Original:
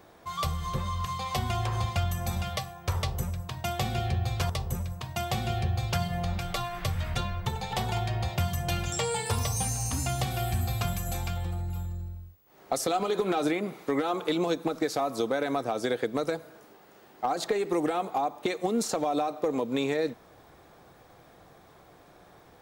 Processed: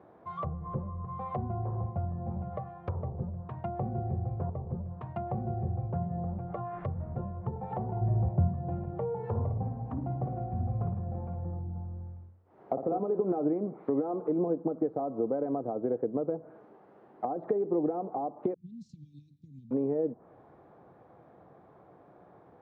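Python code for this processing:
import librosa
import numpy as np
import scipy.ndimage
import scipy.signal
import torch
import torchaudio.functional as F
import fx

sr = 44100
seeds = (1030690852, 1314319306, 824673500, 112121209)

y = fx.low_shelf(x, sr, hz=210.0, db=9.0, at=(8.01, 8.52))
y = fx.room_flutter(y, sr, wall_m=9.5, rt60_s=0.56, at=(9.18, 12.98))
y = fx.cheby2_bandstop(y, sr, low_hz=550.0, high_hz=1300.0, order=4, stop_db=80, at=(18.54, 19.71))
y = scipy.signal.sosfilt(scipy.signal.butter(2, 1000.0, 'lowpass', fs=sr, output='sos'), y)
y = fx.env_lowpass_down(y, sr, base_hz=630.0, full_db=-28.5)
y = scipy.signal.sosfilt(scipy.signal.butter(2, 110.0, 'highpass', fs=sr, output='sos'), y)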